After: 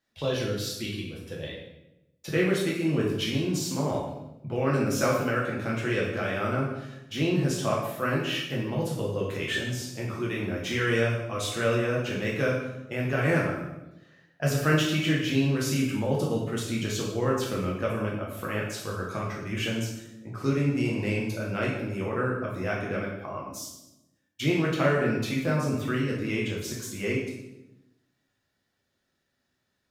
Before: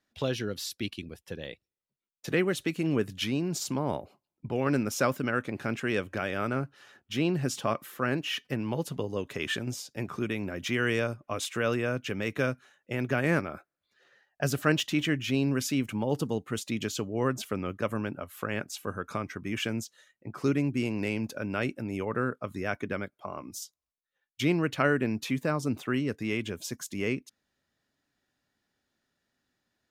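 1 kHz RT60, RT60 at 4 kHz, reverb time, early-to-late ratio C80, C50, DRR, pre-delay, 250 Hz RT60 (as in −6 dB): 0.85 s, 0.75 s, 0.90 s, 5.5 dB, 2.5 dB, −4.0 dB, 6 ms, 1.3 s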